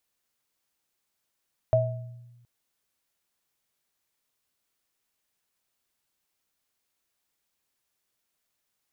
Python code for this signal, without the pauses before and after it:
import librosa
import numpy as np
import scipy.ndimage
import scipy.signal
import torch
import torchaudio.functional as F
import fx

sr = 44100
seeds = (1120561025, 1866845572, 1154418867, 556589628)

y = fx.additive_free(sr, length_s=0.72, hz=120.0, level_db=-22.0, upper_db=(6,), decay_s=1.27, upper_decays_s=(0.52,), upper_hz=(642.0,))